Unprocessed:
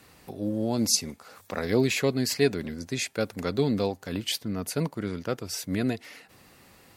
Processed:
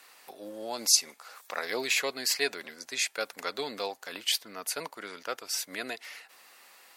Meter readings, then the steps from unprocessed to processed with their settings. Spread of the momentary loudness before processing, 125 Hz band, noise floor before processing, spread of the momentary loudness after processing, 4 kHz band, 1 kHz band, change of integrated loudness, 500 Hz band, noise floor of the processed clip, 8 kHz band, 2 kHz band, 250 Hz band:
11 LU, -28.0 dB, -56 dBFS, 18 LU, +2.0 dB, 0.0 dB, -2.5 dB, -8.5 dB, -60 dBFS, +2.0 dB, +2.0 dB, -17.5 dB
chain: HPF 810 Hz 12 dB/oct; gain +2 dB

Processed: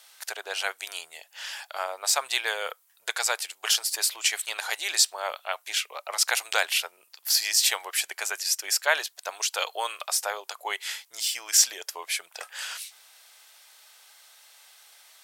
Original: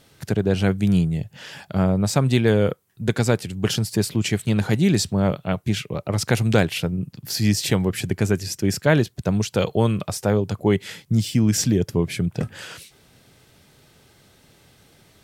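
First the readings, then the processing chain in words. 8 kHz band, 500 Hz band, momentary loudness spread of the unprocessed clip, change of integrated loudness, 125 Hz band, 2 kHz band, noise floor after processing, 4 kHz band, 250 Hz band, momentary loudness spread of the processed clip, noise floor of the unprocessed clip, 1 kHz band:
+5.5 dB, -14.0 dB, 8 LU, -4.5 dB, under -40 dB, +1.5 dB, -63 dBFS, +4.0 dB, under -35 dB, 15 LU, -56 dBFS, -1.0 dB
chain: inverse Chebyshev high-pass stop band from 220 Hz, stop band 60 dB; high shelf 3800 Hz +7 dB

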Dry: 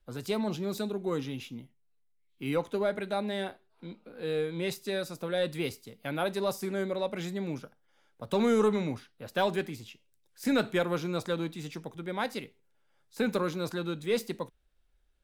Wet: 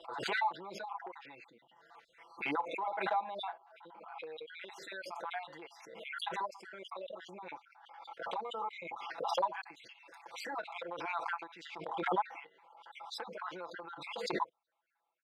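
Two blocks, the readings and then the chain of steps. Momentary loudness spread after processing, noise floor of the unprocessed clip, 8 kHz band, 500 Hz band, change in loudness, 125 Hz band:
18 LU, -69 dBFS, -10.5 dB, -12.0 dB, -7.5 dB, -21.5 dB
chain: random spectral dropouts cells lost 50%; comb 6 ms, depth 95%; compressor 6:1, threshold -34 dBFS, peak gain reduction 12.5 dB; wavefolder -27 dBFS; ladder band-pass 980 Hz, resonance 60%; backwards sustainer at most 40 dB/s; gain +11.5 dB

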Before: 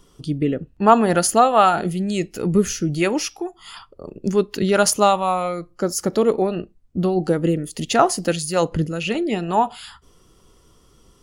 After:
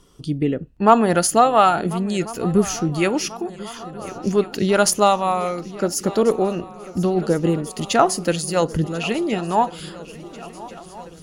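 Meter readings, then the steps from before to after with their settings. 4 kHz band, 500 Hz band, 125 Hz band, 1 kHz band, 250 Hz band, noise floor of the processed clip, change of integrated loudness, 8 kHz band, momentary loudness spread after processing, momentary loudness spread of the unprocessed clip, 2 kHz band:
0.0 dB, 0.0 dB, 0.0 dB, 0.0 dB, 0.0 dB, -41 dBFS, 0.0 dB, 0.0 dB, 19 LU, 12 LU, 0.0 dB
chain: added harmonics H 4 -37 dB, 6 -44 dB, 8 -42 dB, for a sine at -1.5 dBFS; swung echo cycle 1.39 s, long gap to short 3:1, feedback 59%, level -19 dB

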